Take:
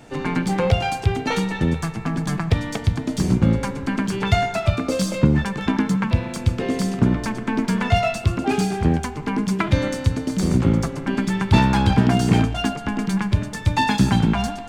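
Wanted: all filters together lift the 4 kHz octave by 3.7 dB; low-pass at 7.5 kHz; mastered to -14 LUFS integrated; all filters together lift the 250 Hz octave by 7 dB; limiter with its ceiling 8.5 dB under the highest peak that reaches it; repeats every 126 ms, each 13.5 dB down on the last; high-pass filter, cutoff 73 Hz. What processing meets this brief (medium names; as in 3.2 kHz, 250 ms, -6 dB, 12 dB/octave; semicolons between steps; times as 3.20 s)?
high-pass 73 Hz; low-pass 7.5 kHz; peaking EQ 250 Hz +9 dB; peaking EQ 4 kHz +5 dB; peak limiter -7.5 dBFS; feedback delay 126 ms, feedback 21%, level -13.5 dB; trim +4 dB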